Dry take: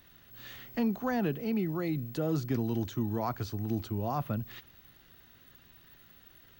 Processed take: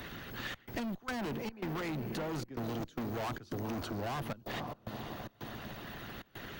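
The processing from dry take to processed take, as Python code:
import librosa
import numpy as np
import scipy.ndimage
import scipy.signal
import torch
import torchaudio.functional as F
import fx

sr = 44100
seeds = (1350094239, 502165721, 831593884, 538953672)

y = fx.high_shelf(x, sr, hz=9000.0, db=-4.5)
y = fx.echo_diffused(y, sr, ms=498, feedback_pct=40, wet_db=-13.5)
y = fx.hpss(y, sr, part='harmonic', gain_db=-10)
y = fx.step_gate(y, sr, bpm=111, pattern='xxxx.xx.xxx.xx', floor_db=-24.0, edge_ms=4.5)
y = fx.tube_stage(y, sr, drive_db=45.0, bias=0.5)
y = fx.band_squash(y, sr, depth_pct=70)
y = y * 10.0 ** (10.5 / 20.0)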